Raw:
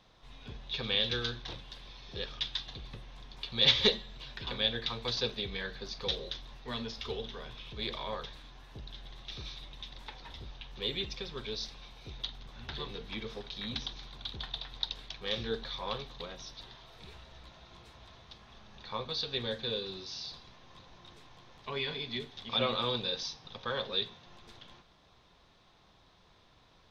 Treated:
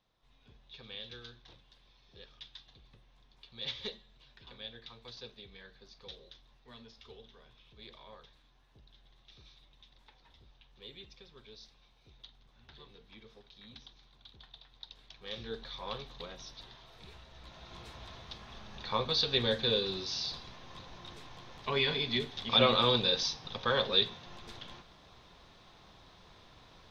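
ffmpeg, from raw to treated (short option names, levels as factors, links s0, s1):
-af "volume=1.88,afade=t=in:st=14.82:d=1.32:silence=0.223872,afade=t=in:st=17.33:d=0.51:silence=0.421697"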